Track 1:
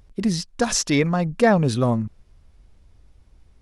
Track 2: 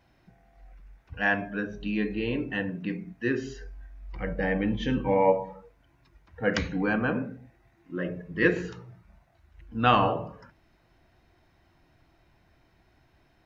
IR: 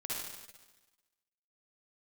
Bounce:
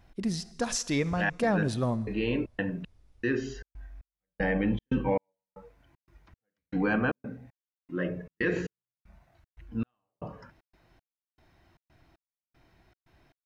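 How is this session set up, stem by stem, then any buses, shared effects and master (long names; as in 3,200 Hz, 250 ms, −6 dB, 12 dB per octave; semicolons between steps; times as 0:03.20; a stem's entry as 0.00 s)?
−9.0 dB, 0.00 s, send −19 dB, no processing
+0.5 dB, 0.00 s, no send, gate pattern "x.xx...xx" 116 BPM −60 dB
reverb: on, RT60 1.2 s, pre-delay 49 ms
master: brickwall limiter −17 dBFS, peak gain reduction 10 dB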